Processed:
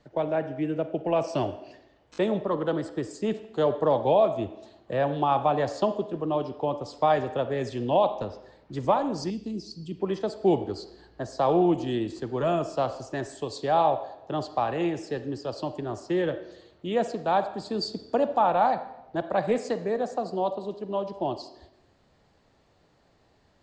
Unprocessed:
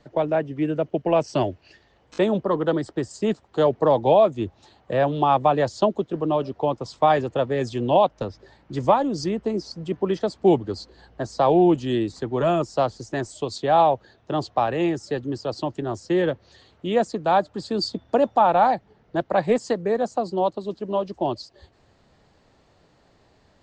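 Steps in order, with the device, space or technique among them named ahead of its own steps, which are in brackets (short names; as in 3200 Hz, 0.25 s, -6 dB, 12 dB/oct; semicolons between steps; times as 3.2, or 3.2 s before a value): filtered reverb send (on a send: HPF 290 Hz 12 dB/oct + LPF 5500 Hz 12 dB/oct + reverb RT60 0.90 s, pre-delay 36 ms, DRR 10 dB); 9.3–10 on the sum: band shelf 940 Hz -14.5 dB 2.7 oct; gain -5 dB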